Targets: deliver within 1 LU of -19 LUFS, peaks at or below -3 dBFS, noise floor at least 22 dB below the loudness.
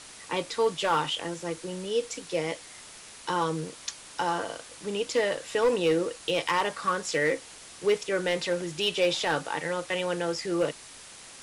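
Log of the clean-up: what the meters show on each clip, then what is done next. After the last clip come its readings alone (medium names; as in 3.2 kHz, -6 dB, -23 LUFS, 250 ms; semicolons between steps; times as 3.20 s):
clipped samples 0.5%; clipping level -17.5 dBFS; noise floor -47 dBFS; noise floor target -51 dBFS; loudness -29.0 LUFS; peak level -17.5 dBFS; loudness target -19.0 LUFS
-> clip repair -17.5 dBFS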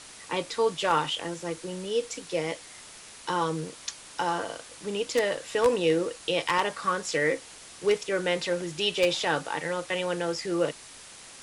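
clipped samples 0.0%; noise floor -47 dBFS; noise floor target -51 dBFS
-> noise reduction 6 dB, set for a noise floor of -47 dBFS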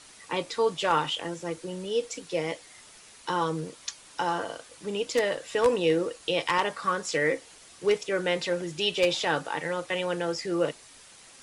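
noise floor -52 dBFS; loudness -28.5 LUFS; peak level -8.5 dBFS; loudness target -19.0 LUFS
-> trim +9.5 dB; peak limiter -3 dBFS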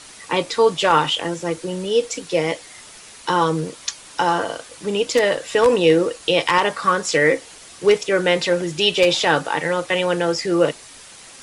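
loudness -19.5 LUFS; peak level -3.0 dBFS; noise floor -42 dBFS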